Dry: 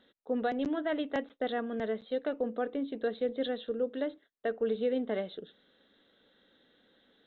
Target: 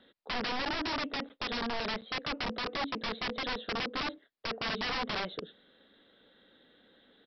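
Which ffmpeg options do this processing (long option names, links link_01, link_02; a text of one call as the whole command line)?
ffmpeg -i in.wav -filter_complex "[0:a]acrossover=split=350|1700[link_01][link_02][link_03];[link_01]acompressor=threshold=-36dB:ratio=4[link_04];[link_02]acompressor=threshold=-31dB:ratio=4[link_05];[link_03]acompressor=threshold=-48dB:ratio=4[link_06];[link_04][link_05][link_06]amix=inputs=3:normalize=0,aresample=11025,aeval=exprs='(mod(39.8*val(0)+1,2)-1)/39.8':channel_layout=same,aresample=44100,volume=3.5dB" out.wav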